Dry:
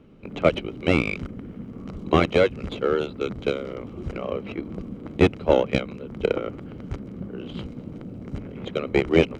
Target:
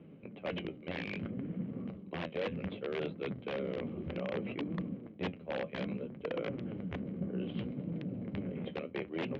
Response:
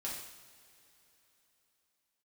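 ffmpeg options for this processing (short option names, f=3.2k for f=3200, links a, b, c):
-af "equalizer=f=490:t=o:w=0.24:g=-3,areverse,acompressor=threshold=-30dB:ratio=16,areverse,flanger=delay=5.7:depth=7.8:regen=58:speed=0.63:shape=triangular,aeval=exprs='(mod(28.2*val(0)+1,2)-1)/28.2':c=same,highpass=110,equalizer=f=180:t=q:w=4:g=6,equalizer=f=530:t=q:w=4:g=5,equalizer=f=910:t=q:w=4:g=-4,equalizer=f=1.3k:t=q:w=4:g=-7,lowpass=f=3.1k:w=0.5412,lowpass=f=3.1k:w=1.3066,volume=1dB"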